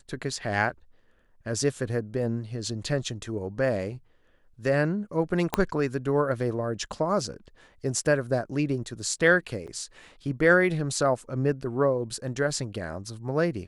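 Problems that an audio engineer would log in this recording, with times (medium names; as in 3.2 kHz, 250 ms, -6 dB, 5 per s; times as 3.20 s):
5.54 s: pop -8 dBFS
9.67–9.68 s: dropout 6.4 ms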